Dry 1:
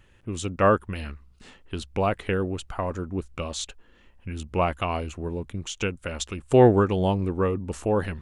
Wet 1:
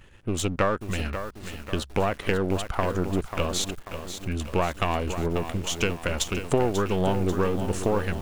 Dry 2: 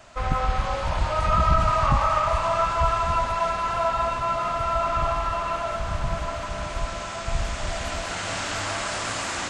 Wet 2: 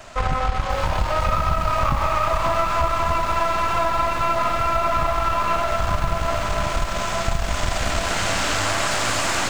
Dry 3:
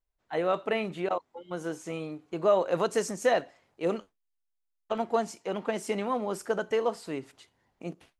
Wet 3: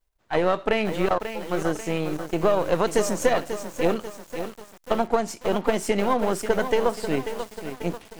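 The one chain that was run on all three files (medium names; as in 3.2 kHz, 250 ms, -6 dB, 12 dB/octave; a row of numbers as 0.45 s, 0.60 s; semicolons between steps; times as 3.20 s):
partial rectifier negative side -7 dB; compression 6:1, threshold -27 dBFS; bit-crushed delay 540 ms, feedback 55%, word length 8-bit, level -9 dB; peak normalisation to -6 dBFS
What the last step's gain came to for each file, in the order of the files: +7.0 dB, +10.0 dB, +11.0 dB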